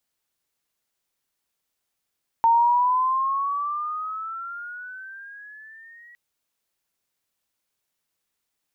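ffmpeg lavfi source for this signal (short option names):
-f lavfi -i "aevalsrc='pow(10,(-13.5-32*t/3.71)/20)*sin(2*PI*911*3.71/(13*log(2)/12)*(exp(13*log(2)/12*t/3.71)-1))':d=3.71:s=44100"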